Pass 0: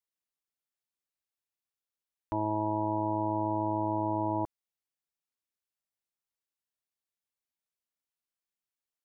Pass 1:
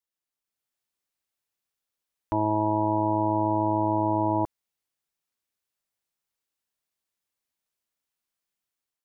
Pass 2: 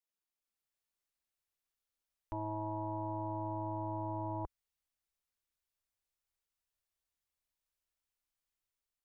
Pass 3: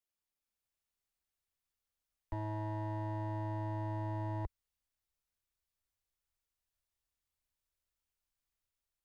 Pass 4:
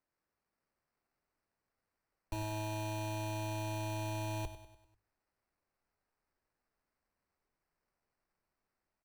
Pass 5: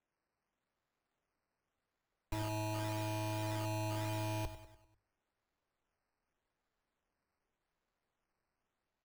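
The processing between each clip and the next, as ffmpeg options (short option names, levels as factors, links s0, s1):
-af "dynaudnorm=f=200:g=5:m=2"
-af "asubboost=boost=6.5:cutoff=72,alimiter=level_in=1.12:limit=0.0631:level=0:latency=1:release=12,volume=0.891,volume=0.531"
-filter_complex "[0:a]acrossover=split=130|750[s0][s1][s2];[s0]acontrast=90[s3];[s2]aeval=exprs='clip(val(0),-1,0.00168)':c=same[s4];[s3][s1][s4]amix=inputs=3:normalize=0,volume=0.891"
-af "acrusher=samples=13:mix=1:aa=0.000001,bandreject=f=50:t=h:w=6,bandreject=f=100:t=h:w=6,aecho=1:1:98|196|294|392|490:0.251|0.128|0.0653|0.0333|0.017,volume=1.12"
-af "acrusher=samples=9:mix=1:aa=0.000001:lfo=1:lforange=9:lforate=0.86"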